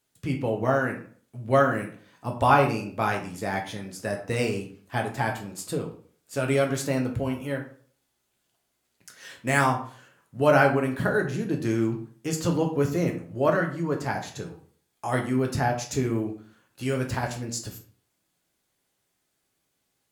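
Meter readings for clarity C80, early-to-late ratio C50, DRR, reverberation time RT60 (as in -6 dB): 13.0 dB, 8.5 dB, 1.5 dB, 0.50 s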